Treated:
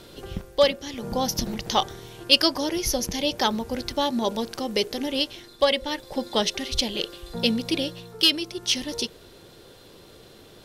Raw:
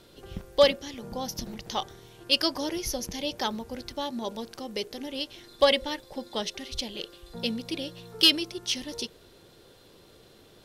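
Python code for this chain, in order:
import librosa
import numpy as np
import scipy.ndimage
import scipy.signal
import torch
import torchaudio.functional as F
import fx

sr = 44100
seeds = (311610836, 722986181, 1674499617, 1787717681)

y = fx.rider(x, sr, range_db=5, speed_s=0.5)
y = F.gain(torch.from_numpy(y), 3.5).numpy()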